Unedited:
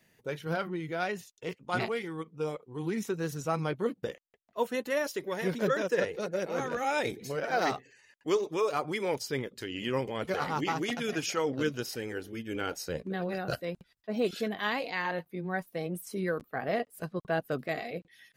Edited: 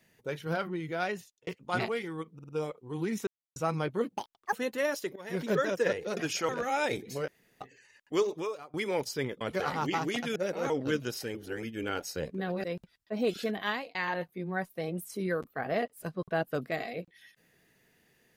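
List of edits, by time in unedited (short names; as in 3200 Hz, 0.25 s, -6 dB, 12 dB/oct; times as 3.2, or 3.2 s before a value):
1.13–1.47 fade out
2.34 stutter 0.05 s, 4 plays
3.12–3.41 mute
4.01–4.65 speed 174%
5.28–5.58 fade in, from -19 dB
6.29–6.63 swap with 11.1–11.42
7.42–7.75 room tone
8.49–8.88 fade out quadratic, to -21.5 dB
9.55–10.15 cut
12.07–12.35 reverse
13.36–13.61 cut
14.65–14.92 fade out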